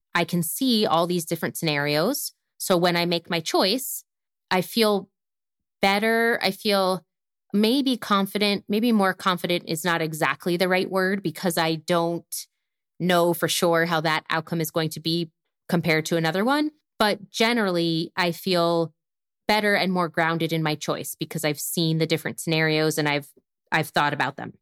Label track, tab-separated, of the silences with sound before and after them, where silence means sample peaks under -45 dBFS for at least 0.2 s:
2.300000	2.600000	silence
4.010000	4.510000	silence
5.040000	5.820000	silence
6.990000	7.540000	silence
12.440000	13.000000	silence
15.280000	15.690000	silence
16.690000	17.000000	silence
18.890000	19.480000	silence
23.380000	23.720000	silence